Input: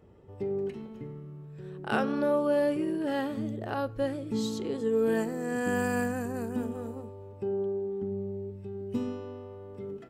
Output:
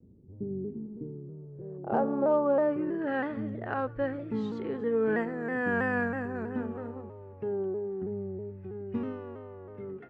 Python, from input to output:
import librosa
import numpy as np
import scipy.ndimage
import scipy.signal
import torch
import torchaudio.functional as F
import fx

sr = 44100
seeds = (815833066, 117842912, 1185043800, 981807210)

y = fx.filter_sweep_lowpass(x, sr, from_hz=240.0, to_hz=1800.0, start_s=0.59, end_s=3.14, q=2.0)
y = fx.cheby_harmonics(y, sr, harmonics=(6, 8), levels_db=(-39, -43), full_scale_db=-13.0)
y = fx.vibrato_shape(y, sr, shape='saw_down', rate_hz=3.1, depth_cents=100.0)
y = F.gain(torch.from_numpy(y), -1.5).numpy()